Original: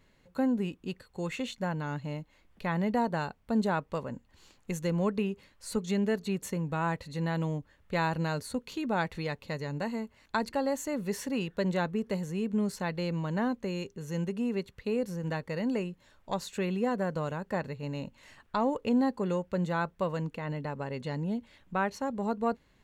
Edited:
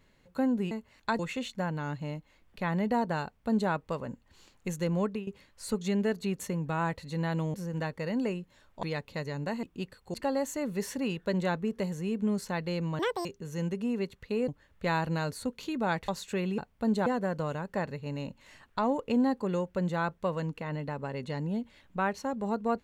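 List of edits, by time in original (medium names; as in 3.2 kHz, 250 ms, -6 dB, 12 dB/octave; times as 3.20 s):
0.71–1.22 s: swap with 9.97–10.45 s
3.26–3.74 s: copy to 16.83 s
4.96–5.30 s: fade out equal-power, to -15 dB
7.57–9.17 s: swap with 15.04–16.33 s
13.30–13.81 s: speed 195%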